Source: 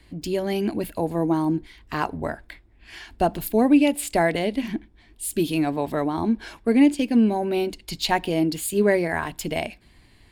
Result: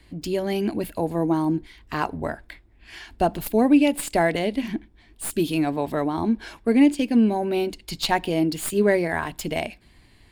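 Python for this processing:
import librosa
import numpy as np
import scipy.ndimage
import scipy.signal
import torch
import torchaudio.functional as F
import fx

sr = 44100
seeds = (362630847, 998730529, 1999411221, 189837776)

y = fx.tracing_dist(x, sr, depth_ms=0.029)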